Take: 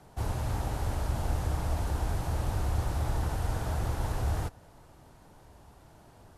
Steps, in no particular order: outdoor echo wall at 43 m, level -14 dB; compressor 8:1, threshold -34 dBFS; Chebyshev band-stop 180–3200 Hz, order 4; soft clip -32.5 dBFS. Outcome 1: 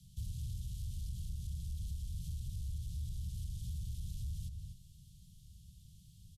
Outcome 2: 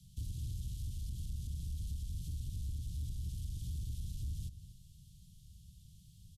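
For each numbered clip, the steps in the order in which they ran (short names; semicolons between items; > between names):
outdoor echo > compressor > soft clip > Chebyshev band-stop; compressor > Chebyshev band-stop > soft clip > outdoor echo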